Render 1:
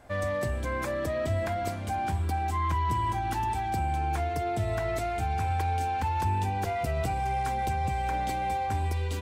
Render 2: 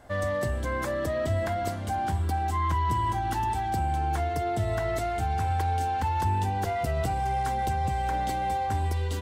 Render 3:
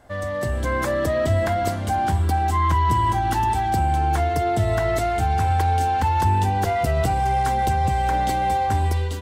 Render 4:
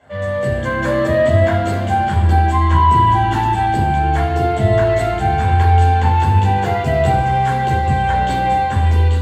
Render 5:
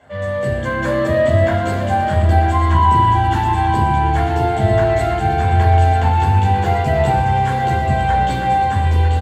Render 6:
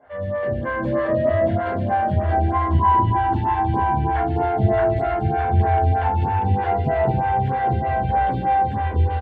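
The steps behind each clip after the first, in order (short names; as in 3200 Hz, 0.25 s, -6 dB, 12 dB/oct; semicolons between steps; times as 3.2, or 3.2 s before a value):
notch 2400 Hz, Q 8.3; gain +1.5 dB
AGC gain up to 7 dB
reverb RT60 0.90 s, pre-delay 12 ms, DRR -4.5 dB; gain -9.5 dB
reverse; upward compressor, threshold -22 dBFS; reverse; echo 0.944 s -9 dB; gain -1 dB
air absorption 380 m; photocell phaser 3.2 Hz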